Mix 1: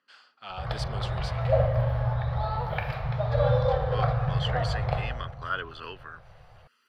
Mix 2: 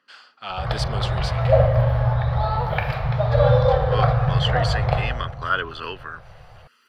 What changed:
speech +8.5 dB; background +7.0 dB

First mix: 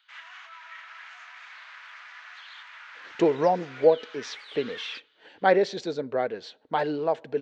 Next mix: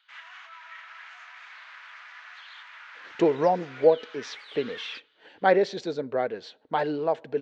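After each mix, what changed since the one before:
master: add treble shelf 5.3 kHz -4 dB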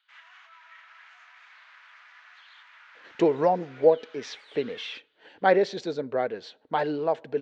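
background -6.5 dB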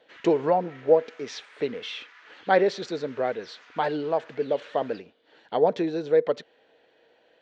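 speech: entry -2.95 s; master: add treble shelf 5.3 kHz +4 dB

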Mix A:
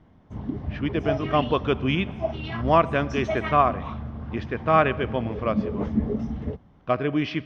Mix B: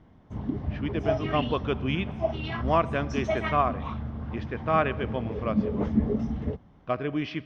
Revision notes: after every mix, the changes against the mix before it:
speech -5.0 dB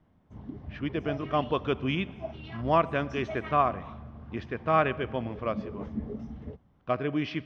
background -10.5 dB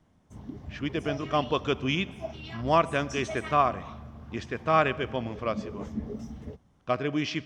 master: remove distance through air 260 m

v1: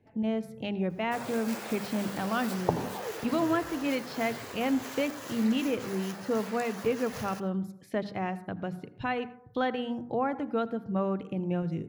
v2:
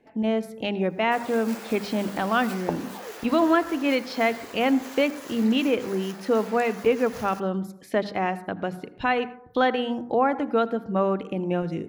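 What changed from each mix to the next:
speech +8.5 dB; second sound: send off; master: add peaking EQ 120 Hz -14 dB 1.1 oct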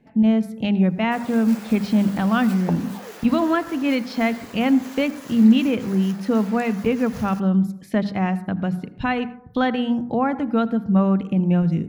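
speech: add resonant low shelf 270 Hz +9.5 dB, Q 1.5

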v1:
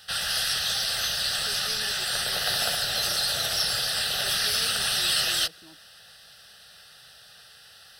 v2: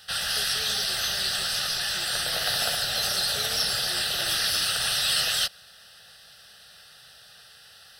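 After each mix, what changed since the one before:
speech: entry -1.10 s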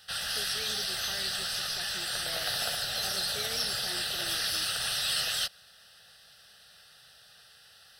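background -5.5 dB

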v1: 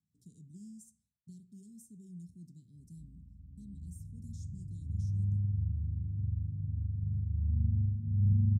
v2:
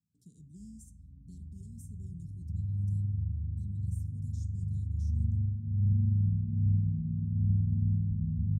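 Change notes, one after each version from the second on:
background: entry -2.40 s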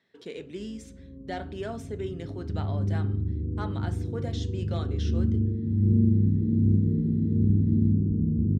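background +3.5 dB; master: remove inverse Chebyshev band-stop 680–2100 Hz, stop band 80 dB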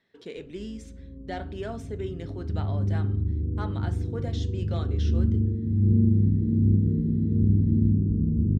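speech: add treble shelf 8.7 kHz -5.5 dB; master: remove high-pass 80 Hz

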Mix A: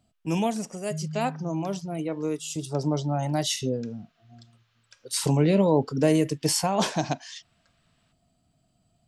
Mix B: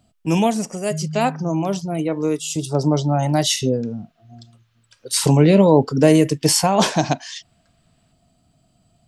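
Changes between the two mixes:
speech +8.0 dB; second sound +6.0 dB

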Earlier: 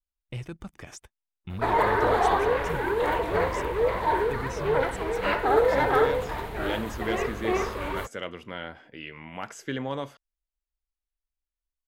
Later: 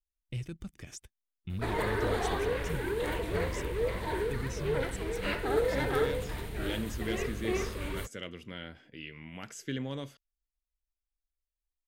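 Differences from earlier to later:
background: add peaking EQ 8.9 kHz +7 dB 0.21 oct; master: add peaking EQ 900 Hz -14 dB 1.9 oct

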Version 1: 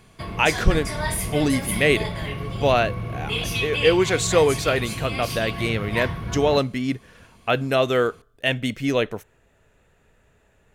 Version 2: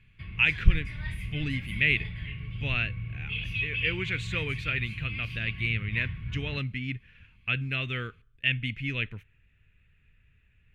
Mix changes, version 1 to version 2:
background -4.5 dB; master: add FFT filter 110 Hz 0 dB, 720 Hz -29 dB, 2.5 kHz +2 dB, 5.5 kHz -24 dB, 9.1 kHz -26 dB

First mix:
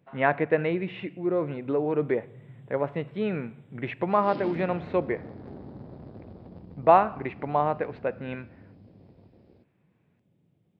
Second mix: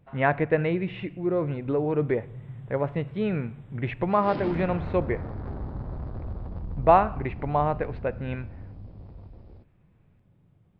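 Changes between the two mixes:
background: add peaking EQ 1.2 kHz +11 dB 1.5 oct; master: remove high-pass 190 Hz 12 dB/octave

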